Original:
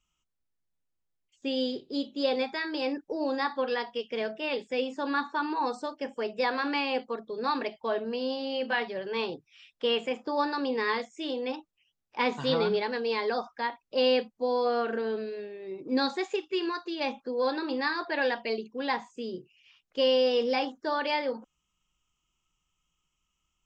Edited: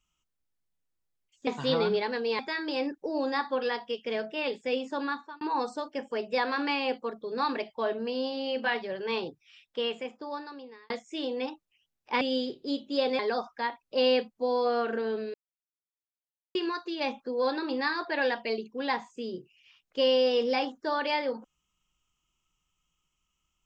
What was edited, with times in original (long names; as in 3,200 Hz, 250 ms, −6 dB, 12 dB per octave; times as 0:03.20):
0:01.47–0:02.45: swap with 0:12.27–0:13.19
0:05.01–0:05.47: fade out
0:09.34–0:10.96: fade out linear
0:15.34–0:16.55: silence